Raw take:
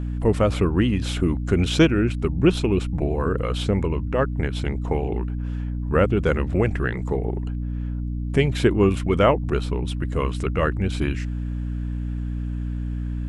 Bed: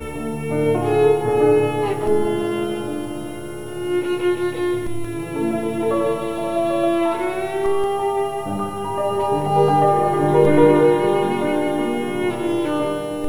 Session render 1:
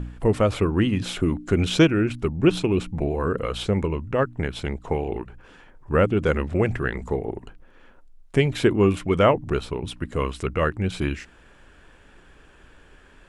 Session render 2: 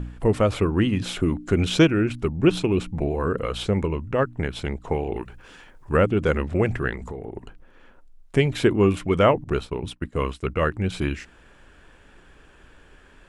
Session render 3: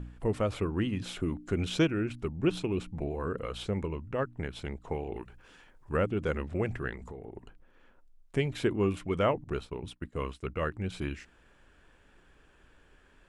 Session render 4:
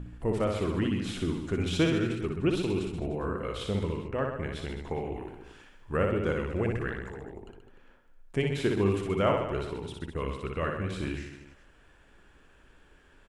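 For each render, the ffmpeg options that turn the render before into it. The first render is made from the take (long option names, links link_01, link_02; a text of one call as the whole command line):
ffmpeg -i in.wav -af "bandreject=frequency=60:width_type=h:width=4,bandreject=frequency=120:width_type=h:width=4,bandreject=frequency=180:width_type=h:width=4,bandreject=frequency=240:width_type=h:width=4,bandreject=frequency=300:width_type=h:width=4" out.wav
ffmpeg -i in.wav -filter_complex "[0:a]asplit=3[link_01][link_02][link_03];[link_01]afade=type=out:start_time=5.15:duration=0.02[link_04];[link_02]highshelf=frequency=2400:gain=9.5,afade=type=in:start_time=5.15:duration=0.02,afade=type=out:start_time=5.96:duration=0.02[link_05];[link_03]afade=type=in:start_time=5.96:duration=0.02[link_06];[link_04][link_05][link_06]amix=inputs=3:normalize=0,asettb=1/sr,asplit=3[link_07][link_08][link_09];[link_07]atrim=end=6.954[link_10];[link_08]atrim=start=6.95:end=7.37,asetpts=PTS-STARTPTS,afade=type=in:duration=0.004:curve=qsin,afade=type=out:start_time=0.416:duration=0.004:curve=qsin,acompressor=threshold=-29dB:ratio=12:attack=3.2:release=140:knee=1:detection=peak[link_11];[link_09]atrim=start=7.366[link_12];[link_10][link_11]acrossfade=duration=0.004:curve1=hsin:curve2=qsin[link_13];[link_13][link_12]acrossfade=duration=0.004:curve1=qsin:curve2=hsin,asettb=1/sr,asplit=3[link_14][link_15][link_16];[link_14]atrim=end=9.444[link_17];[link_15]atrim=start=9.44:end=10.73,asetpts=PTS-STARTPTS,afade=type=in:duration=0.004:curve=qsin,afade=type=out:start_time=1.286:duration=0.004:curve=qsin,agate=range=-33dB:threshold=-32dB:ratio=3:release=100:detection=peak[link_18];[link_16]atrim=start=10.726[link_19];[link_17][link_18]acrossfade=duration=0.004:curve1=hsin:curve2=qsin[link_20];[link_20][link_19]acrossfade=duration=0.004:curve1=qsin:curve2=hsin" out.wav
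ffmpeg -i in.wav -af "volume=-9.5dB" out.wav
ffmpeg -i in.wav -af "aecho=1:1:60|129|208.4|299.6|404.5:0.631|0.398|0.251|0.158|0.1" out.wav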